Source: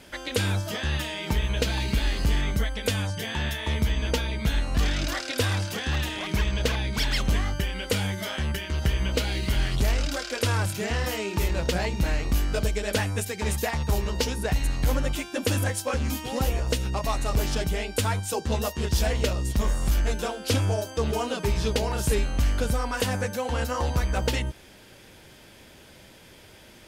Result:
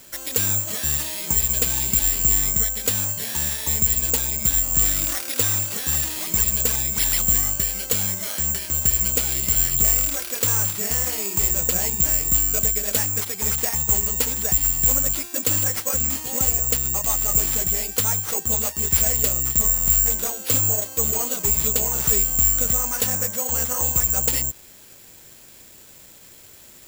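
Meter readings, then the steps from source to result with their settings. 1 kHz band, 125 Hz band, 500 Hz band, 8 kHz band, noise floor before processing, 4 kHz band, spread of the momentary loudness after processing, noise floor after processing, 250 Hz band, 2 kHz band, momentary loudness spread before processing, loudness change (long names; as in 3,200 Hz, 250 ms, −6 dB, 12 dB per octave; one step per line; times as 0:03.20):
−3.5 dB, −4.0 dB, −4.0 dB, +17.5 dB, −50 dBFS, 0.0 dB, 5 LU, −46 dBFS, −4.0 dB, −3.0 dB, 3 LU, +8.5 dB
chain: bad sample-rate conversion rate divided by 6×, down none, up zero stuff
level −4 dB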